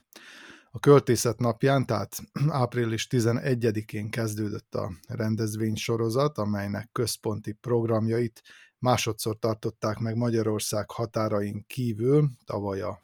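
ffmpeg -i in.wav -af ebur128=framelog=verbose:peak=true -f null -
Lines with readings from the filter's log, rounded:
Integrated loudness:
  I:         -27.1 LUFS
  Threshold: -37.3 LUFS
Loudness range:
  LRA:         4.2 LU
  Threshold: -47.8 LUFS
  LRA low:   -29.1 LUFS
  LRA high:  -24.9 LUFS
True peak:
  Peak:       -6.3 dBFS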